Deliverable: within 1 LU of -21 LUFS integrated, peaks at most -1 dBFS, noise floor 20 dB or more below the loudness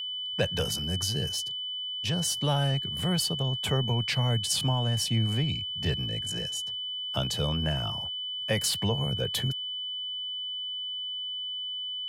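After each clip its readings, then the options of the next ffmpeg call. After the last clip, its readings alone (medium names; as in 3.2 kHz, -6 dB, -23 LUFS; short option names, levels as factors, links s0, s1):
steady tone 3 kHz; tone level -32 dBFS; loudness -28.5 LUFS; peak level -13.0 dBFS; loudness target -21.0 LUFS
-> -af "bandreject=f=3000:w=30"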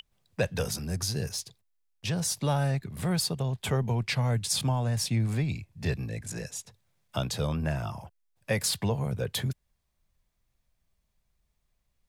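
steady tone not found; loudness -30.0 LUFS; peak level -13.5 dBFS; loudness target -21.0 LUFS
-> -af "volume=2.82"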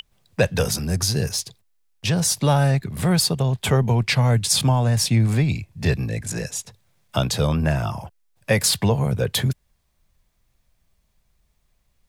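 loudness -21.0 LUFS; peak level -4.5 dBFS; noise floor -68 dBFS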